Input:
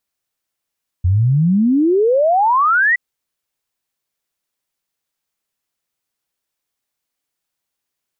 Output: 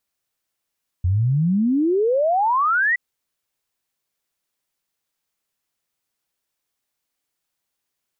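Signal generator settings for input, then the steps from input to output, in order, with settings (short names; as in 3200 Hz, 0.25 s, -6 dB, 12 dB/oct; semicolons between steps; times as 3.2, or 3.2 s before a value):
log sweep 85 Hz -> 2000 Hz 1.92 s -10.5 dBFS
limiter -15.5 dBFS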